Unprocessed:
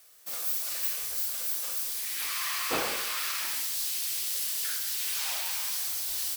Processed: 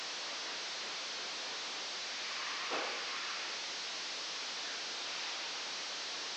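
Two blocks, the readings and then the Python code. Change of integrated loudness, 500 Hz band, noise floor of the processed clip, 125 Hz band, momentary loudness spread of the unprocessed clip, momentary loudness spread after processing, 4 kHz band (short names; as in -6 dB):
-9.5 dB, -4.0 dB, -42 dBFS, n/a, 2 LU, 2 LU, -2.5 dB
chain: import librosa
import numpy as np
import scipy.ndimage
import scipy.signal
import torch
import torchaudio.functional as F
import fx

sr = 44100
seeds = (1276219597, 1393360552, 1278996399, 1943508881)

y = fx.delta_mod(x, sr, bps=32000, step_db=-26.5)
y = scipy.signal.sosfilt(scipy.signal.butter(2, 330.0, 'highpass', fs=sr, output='sos'), y)
y = y * librosa.db_to_amplitude(-7.5)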